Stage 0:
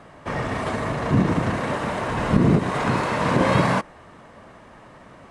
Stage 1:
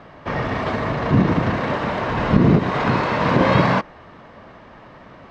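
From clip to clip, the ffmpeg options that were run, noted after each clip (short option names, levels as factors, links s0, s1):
-af "lowpass=f=5200:w=0.5412,lowpass=f=5200:w=1.3066,volume=1.41"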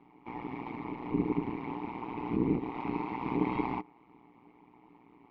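-filter_complex "[0:a]asplit=3[s0][s1][s2];[s0]bandpass=f=300:t=q:w=8,volume=1[s3];[s1]bandpass=f=870:t=q:w=8,volume=0.501[s4];[s2]bandpass=f=2240:t=q:w=8,volume=0.355[s5];[s3][s4][s5]amix=inputs=3:normalize=0,tremolo=f=120:d=0.889"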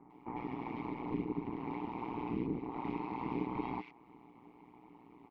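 -filter_complex "[0:a]acompressor=threshold=0.0141:ratio=2.5,acrossover=split=1800[s0][s1];[s1]adelay=100[s2];[s0][s2]amix=inputs=2:normalize=0,volume=1.12"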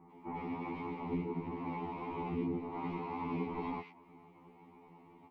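-af "afftfilt=real='re*2*eq(mod(b,4),0)':imag='im*2*eq(mod(b,4),0)':win_size=2048:overlap=0.75,volume=1.41"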